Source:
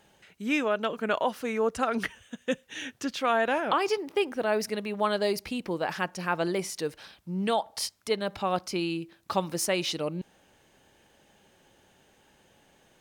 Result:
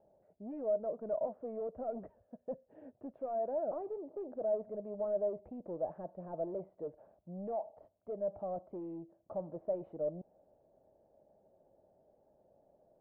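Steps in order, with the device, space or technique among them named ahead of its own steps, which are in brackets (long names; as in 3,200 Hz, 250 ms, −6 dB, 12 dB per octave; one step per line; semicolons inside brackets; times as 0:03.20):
overdriven synthesiser ladder filter (soft clipping −30 dBFS, distortion −7 dB; transistor ladder low-pass 670 Hz, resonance 75%)
level +1 dB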